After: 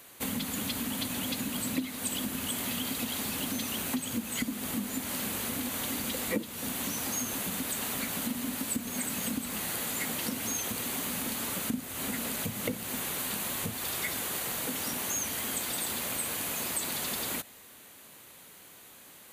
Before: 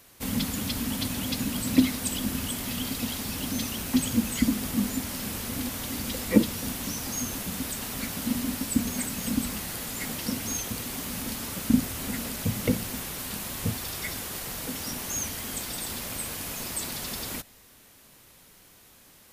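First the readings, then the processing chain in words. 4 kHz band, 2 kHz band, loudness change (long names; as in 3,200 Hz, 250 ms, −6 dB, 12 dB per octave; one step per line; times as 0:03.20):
−1.5 dB, 0.0 dB, −2.5 dB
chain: parametric band 5,300 Hz −9.5 dB 0.26 octaves
downward compressor 4 to 1, threshold −32 dBFS, peak gain reduction 16.5 dB
high-pass filter 240 Hz 6 dB per octave
level +3.5 dB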